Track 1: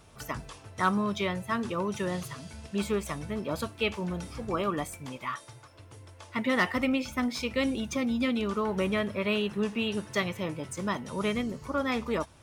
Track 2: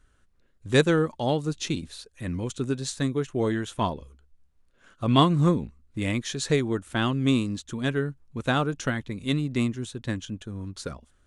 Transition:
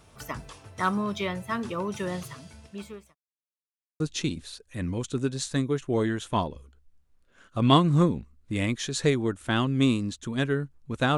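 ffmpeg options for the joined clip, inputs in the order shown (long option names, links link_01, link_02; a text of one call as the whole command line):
ffmpeg -i cue0.wav -i cue1.wav -filter_complex "[0:a]apad=whole_dur=11.17,atrim=end=11.17,asplit=2[link_01][link_02];[link_01]atrim=end=3.15,asetpts=PTS-STARTPTS,afade=type=out:start_time=2.18:duration=0.97[link_03];[link_02]atrim=start=3.15:end=4,asetpts=PTS-STARTPTS,volume=0[link_04];[1:a]atrim=start=1.46:end=8.63,asetpts=PTS-STARTPTS,afade=type=in:duration=0.004:curve=hsin[link_05];[link_03][link_04][link_05]concat=n=3:v=0:a=1" out.wav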